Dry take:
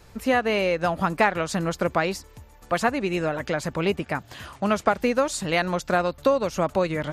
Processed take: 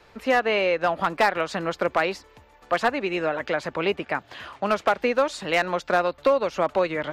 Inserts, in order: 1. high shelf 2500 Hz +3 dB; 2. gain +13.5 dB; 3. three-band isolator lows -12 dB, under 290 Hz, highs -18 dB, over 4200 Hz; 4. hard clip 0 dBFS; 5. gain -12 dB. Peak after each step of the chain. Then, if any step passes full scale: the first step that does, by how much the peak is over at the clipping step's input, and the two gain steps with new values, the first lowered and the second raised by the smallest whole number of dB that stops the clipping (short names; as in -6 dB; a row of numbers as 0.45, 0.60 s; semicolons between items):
-6.0, +7.5, +8.0, 0.0, -12.0 dBFS; step 2, 8.0 dB; step 2 +5.5 dB, step 5 -4 dB